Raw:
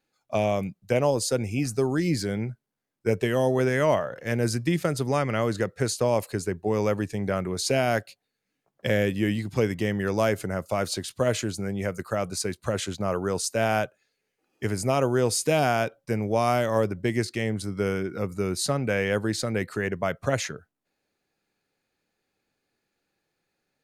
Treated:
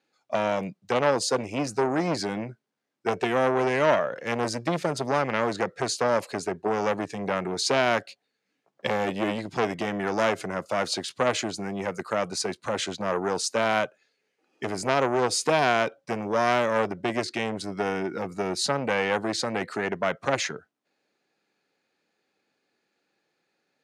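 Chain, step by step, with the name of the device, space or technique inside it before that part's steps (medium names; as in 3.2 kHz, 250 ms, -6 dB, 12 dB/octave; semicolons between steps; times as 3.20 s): public-address speaker with an overloaded transformer (transformer saturation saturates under 1.2 kHz; band-pass 210–6400 Hz); trim +4 dB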